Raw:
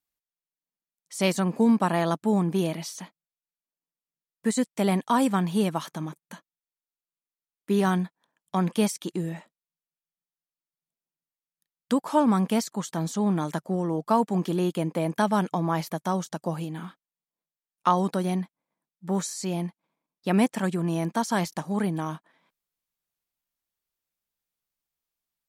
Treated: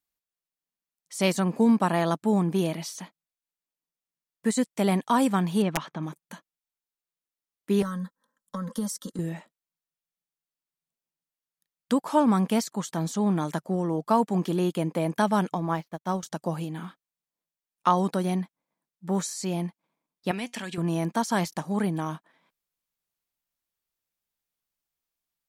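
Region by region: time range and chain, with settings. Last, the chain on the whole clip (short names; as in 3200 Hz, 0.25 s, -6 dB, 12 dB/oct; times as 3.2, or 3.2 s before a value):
5.62–6.03 LPF 3100 Hz + wrapped overs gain 15 dB
7.82–9.19 compressor, threshold -27 dBFS + fixed phaser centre 500 Hz, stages 8 + comb 3.8 ms, depth 71%
15.54–16.23 median filter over 5 samples + upward expander 2.5:1, over -43 dBFS
20.31–20.78 weighting filter D + compressor 3:1, threshold -26 dBFS + resonator 240 Hz, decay 0.15 s, mix 50%
whole clip: dry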